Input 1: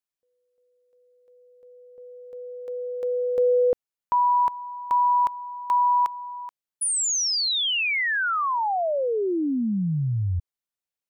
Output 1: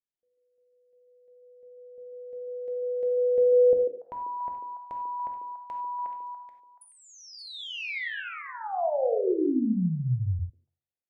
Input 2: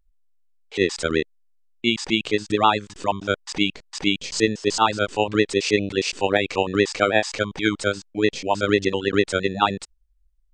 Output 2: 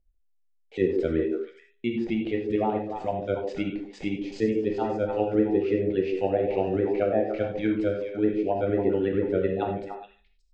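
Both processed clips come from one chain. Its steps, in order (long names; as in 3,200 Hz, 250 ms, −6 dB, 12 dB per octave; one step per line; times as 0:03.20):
hum removal 67.98 Hz, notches 7
treble cut that deepens with the level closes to 970 Hz, closed at −15.5 dBFS
drawn EQ curve 690 Hz 0 dB, 1,100 Hz −19 dB, 2,000 Hz −6 dB, 5,400 Hz −16 dB, 8,000 Hz −18 dB
echo through a band-pass that steps 143 ms, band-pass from 380 Hz, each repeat 1.4 octaves, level −3 dB
reverb whose tail is shaped and stops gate 120 ms flat, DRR 3 dB
level −3.5 dB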